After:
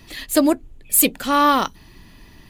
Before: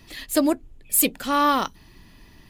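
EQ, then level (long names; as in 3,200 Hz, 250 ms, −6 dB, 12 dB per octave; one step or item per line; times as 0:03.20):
notch filter 5,200 Hz, Q 28
+4.0 dB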